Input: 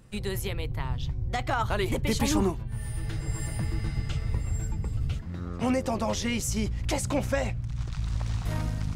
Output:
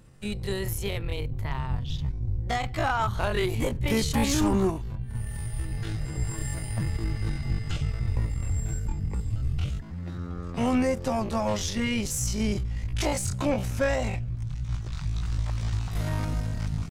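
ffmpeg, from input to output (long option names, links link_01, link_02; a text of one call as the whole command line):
ffmpeg -i in.wav -af "atempo=0.53,aeval=exprs='0.224*(cos(1*acos(clip(val(0)/0.224,-1,1)))-cos(1*PI/2))+0.0224*(cos(5*acos(clip(val(0)/0.224,-1,1)))-cos(5*PI/2))+0.0126*(cos(7*acos(clip(val(0)/0.224,-1,1)))-cos(7*PI/2))+0.00794*(cos(8*acos(clip(val(0)/0.224,-1,1)))-cos(8*PI/2))':channel_layout=same" out.wav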